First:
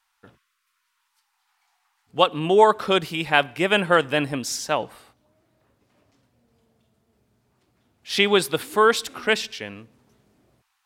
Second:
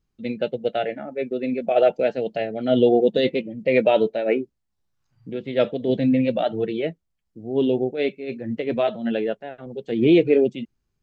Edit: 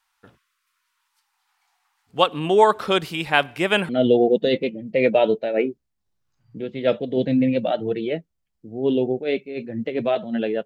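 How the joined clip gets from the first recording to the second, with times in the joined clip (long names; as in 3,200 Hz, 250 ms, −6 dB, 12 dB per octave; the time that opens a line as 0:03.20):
first
0:03.89: continue with second from 0:02.61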